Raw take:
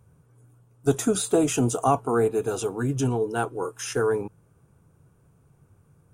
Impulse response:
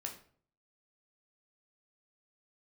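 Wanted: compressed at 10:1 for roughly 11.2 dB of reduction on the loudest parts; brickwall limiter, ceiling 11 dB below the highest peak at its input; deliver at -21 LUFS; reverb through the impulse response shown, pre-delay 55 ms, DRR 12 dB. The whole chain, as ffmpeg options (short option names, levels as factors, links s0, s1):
-filter_complex "[0:a]acompressor=threshold=0.0447:ratio=10,alimiter=level_in=1.5:limit=0.0631:level=0:latency=1,volume=0.668,asplit=2[s0][s1];[1:a]atrim=start_sample=2205,adelay=55[s2];[s1][s2]afir=irnorm=-1:irlink=0,volume=0.299[s3];[s0][s3]amix=inputs=2:normalize=0,volume=5.62"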